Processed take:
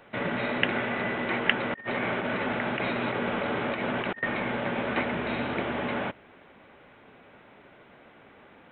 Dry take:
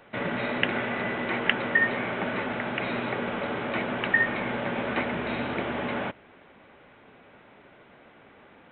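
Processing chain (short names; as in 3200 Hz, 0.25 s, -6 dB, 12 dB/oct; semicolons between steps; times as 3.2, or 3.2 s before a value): 1.7–4.23 negative-ratio compressor -30 dBFS, ratio -0.5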